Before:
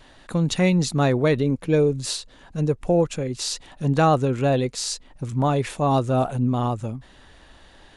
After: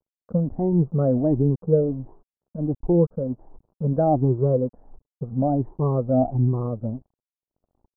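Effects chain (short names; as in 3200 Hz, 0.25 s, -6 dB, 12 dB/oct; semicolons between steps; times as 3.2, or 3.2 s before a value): moving spectral ripple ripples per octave 0.71, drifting +1.4 Hz, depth 17 dB; crossover distortion -38.5 dBFS; Gaussian blur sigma 12 samples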